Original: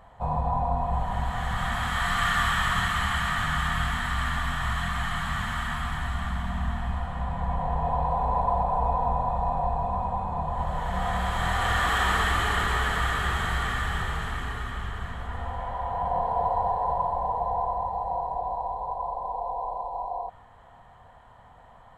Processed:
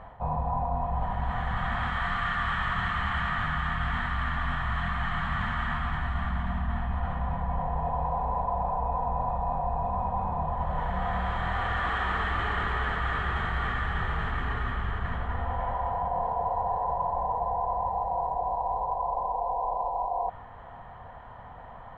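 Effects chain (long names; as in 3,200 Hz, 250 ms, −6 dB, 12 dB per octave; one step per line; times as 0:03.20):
low-pass filter 2,500 Hz 12 dB per octave
reversed playback
downward compressor 6 to 1, threshold −33 dBFS, peak gain reduction 12.5 dB
reversed playback
level +7 dB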